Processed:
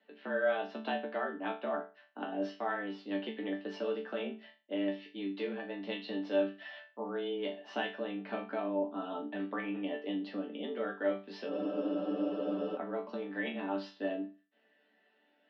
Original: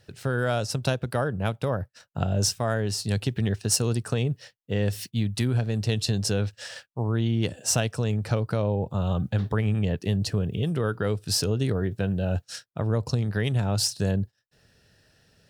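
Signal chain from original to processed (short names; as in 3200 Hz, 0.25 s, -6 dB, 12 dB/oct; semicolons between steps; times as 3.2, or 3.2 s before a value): mistuned SSB +91 Hz 180–3200 Hz; resonator bank D3 sus4, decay 0.31 s; spectral freeze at 11.52, 1.24 s; gain +8.5 dB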